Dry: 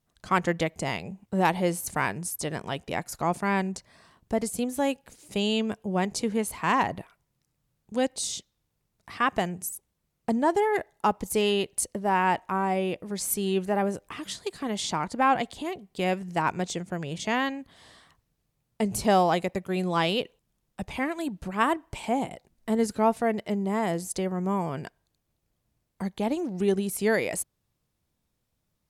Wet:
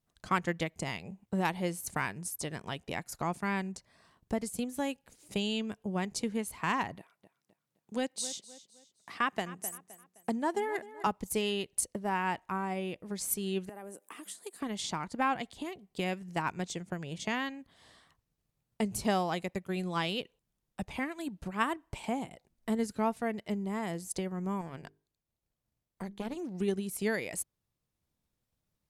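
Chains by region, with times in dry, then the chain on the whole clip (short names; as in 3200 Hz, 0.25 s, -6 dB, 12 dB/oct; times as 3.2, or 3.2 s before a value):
6.97–11.07 HPF 190 Hz + feedback echo 0.259 s, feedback 35%, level -15 dB
13.69–14.61 HPF 220 Hz 24 dB/oct + resonant high shelf 7000 Hz +11 dB, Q 1.5 + compressor 2:1, threshold -42 dBFS
24.61–26.37 notches 50/100/150/200/250/300/350/400/450 Hz + tube stage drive 23 dB, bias 0.7
whole clip: dynamic EQ 620 Hz, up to -5 dB, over -37 dBFS, Q 0.84; transient shaper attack +4 dB, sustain -2 dB; gain -6 dB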